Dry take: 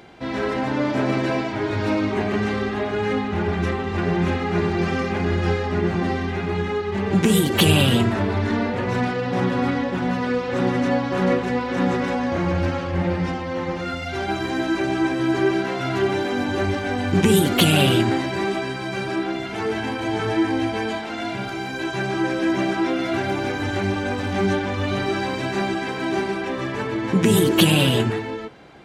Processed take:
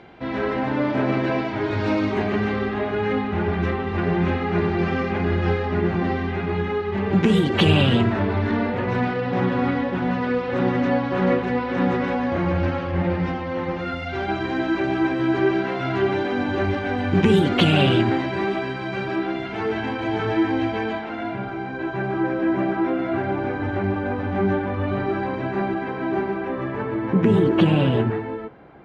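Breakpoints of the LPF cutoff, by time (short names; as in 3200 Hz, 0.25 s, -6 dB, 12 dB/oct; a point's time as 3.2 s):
1.24 s 3100 Hz
2.08 s 5800 Hz
2.49 s 3200 Hz
20.69 s 3200 Hz
21.43 s 1600 Hz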